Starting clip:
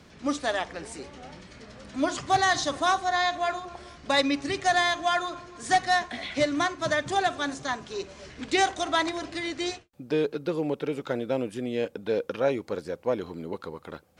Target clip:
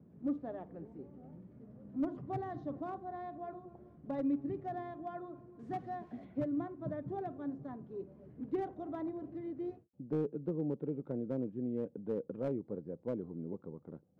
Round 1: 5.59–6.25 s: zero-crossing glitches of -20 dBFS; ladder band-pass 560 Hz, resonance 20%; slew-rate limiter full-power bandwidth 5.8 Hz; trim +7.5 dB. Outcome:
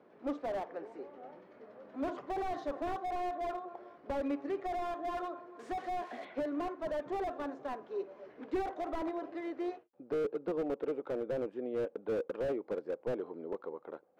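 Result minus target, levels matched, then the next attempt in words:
250 Hz band -4.5 dB
5.59–6.25 s: zero-crossing glitches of -20 dBFS; ladder band-pass 190 Hz, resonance 20%; slew-rate limiter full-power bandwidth 5.8 Hz; trim +7.5 dB

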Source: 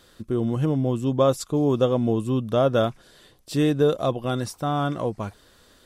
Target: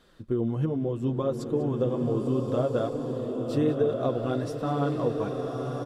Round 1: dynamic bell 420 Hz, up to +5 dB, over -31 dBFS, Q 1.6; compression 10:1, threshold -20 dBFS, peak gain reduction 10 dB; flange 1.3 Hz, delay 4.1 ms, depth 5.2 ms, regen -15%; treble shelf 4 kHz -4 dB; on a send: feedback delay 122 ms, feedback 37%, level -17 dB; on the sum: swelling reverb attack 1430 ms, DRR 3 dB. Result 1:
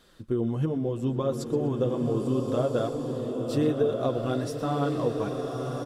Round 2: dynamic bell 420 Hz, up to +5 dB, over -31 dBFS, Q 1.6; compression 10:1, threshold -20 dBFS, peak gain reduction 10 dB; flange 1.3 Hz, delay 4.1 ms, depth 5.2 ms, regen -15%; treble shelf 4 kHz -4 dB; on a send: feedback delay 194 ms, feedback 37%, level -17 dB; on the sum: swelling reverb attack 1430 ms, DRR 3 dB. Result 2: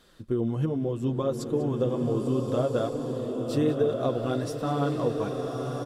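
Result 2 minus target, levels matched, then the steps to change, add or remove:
8 kHz band +5.5 dB
change: treble shelf 4 kHz -11.5 dB

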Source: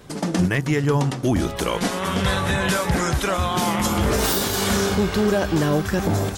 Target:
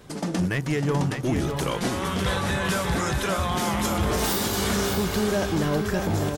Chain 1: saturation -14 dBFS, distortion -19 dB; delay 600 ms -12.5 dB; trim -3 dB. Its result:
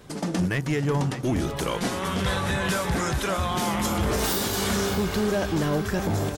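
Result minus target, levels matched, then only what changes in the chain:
echo-to-direct -6 dB
change: delay 600 ms -6.5 dB

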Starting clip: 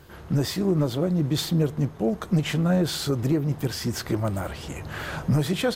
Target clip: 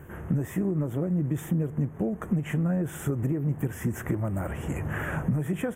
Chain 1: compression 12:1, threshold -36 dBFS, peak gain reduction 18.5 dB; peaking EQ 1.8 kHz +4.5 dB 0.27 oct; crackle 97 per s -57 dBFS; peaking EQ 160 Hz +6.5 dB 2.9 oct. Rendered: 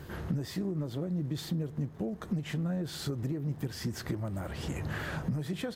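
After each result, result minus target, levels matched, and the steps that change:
4 kHz band +15.0 dB; compression: peak gain reduction +6.5 dB
add after crackle: Butterworth band-stop 4.4 kHz, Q 0.88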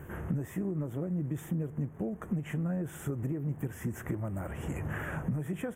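compression: peak gain reduction +6.5 dB
change: compression 12:1, threshold -29 dBFS, peak gain reduction 12 dB

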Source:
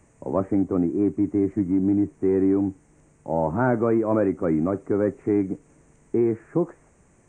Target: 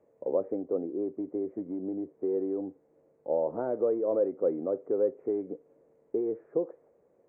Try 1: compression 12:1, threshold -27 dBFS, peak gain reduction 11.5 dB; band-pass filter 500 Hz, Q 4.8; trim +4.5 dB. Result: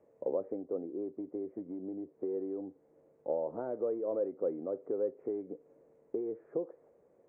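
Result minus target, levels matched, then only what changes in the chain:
compression: peak gain reduction +6.5 dB
change: compression 12:1, threshold -20 dBFS, peak gain reduction 5 dB

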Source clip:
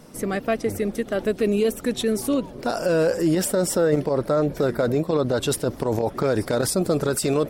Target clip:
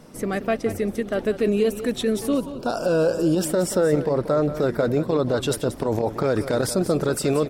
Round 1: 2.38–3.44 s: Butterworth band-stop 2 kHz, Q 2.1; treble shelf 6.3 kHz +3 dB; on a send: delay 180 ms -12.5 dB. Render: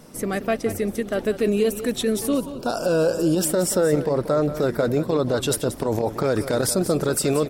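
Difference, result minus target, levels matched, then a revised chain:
8 kHz band +5.0 dB
2.38–3.44 s: Butterworth band-stop 2 kHz, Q 2.1; treble shelf 6.3 kHz -5 dB; on a send: delay 180 ms -12.5 dB

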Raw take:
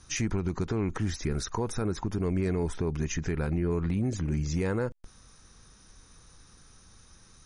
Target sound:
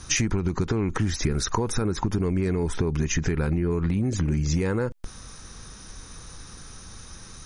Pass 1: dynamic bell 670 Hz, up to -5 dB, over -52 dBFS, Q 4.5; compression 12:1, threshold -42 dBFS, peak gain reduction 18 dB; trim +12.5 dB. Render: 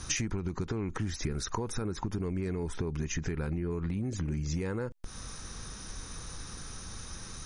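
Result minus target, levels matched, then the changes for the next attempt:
compression: peak gain reduction +8.5 dB
change: compression 12:1, threshold -32.5 dBFS, peak gain reduction 9.5 dB

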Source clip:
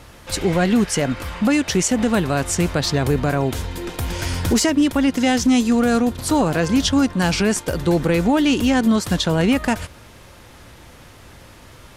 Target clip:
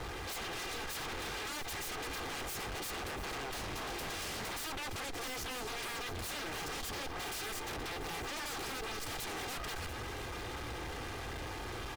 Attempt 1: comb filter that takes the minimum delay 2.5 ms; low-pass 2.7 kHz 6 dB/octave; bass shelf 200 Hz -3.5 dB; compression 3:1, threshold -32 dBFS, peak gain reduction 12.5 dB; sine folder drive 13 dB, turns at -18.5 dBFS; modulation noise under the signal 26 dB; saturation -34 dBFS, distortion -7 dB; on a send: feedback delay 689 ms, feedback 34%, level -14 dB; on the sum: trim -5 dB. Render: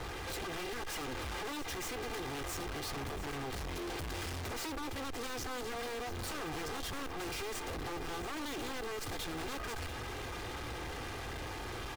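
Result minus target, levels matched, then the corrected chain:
sine folder: distortion -17 dB
comb filter that takes the minimum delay 2.5 ms; low-pass 2.7 kHz 6 dB/octave; bass shelf 200 Hz -3.5 dB; compression 3:1, threshold -32 dBFS, peak gain reduction 12.5 dB; sine folder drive 13 dB, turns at -26 dBFS; modulation noise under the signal 26 dB; saturation -34 dBFS, distortion -13 dB; on a send: feedback delay 689 ms, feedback 34%, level -14 dB; on the sum: trim -5 dB

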